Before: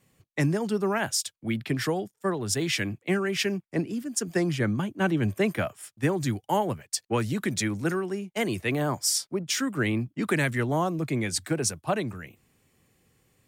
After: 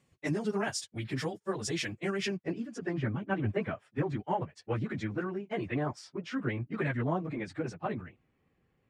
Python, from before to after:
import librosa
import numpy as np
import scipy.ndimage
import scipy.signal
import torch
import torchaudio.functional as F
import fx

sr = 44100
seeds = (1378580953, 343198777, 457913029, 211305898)

y = fx.filter_sweep_lowpass(x, sr, from_hz=8000.0, to_hz=2200.0, start_s=3.25, end_s=4.46, q=0.71)
y = fx.wow_flutter(y, sr, seeds[0], rate_hz=2.1, depth_cents=26.0)
y = fx.stretch_vocoder_free(y, sr, factor=0.66)
y = y * librosa.db_to_amplitude(-2.5)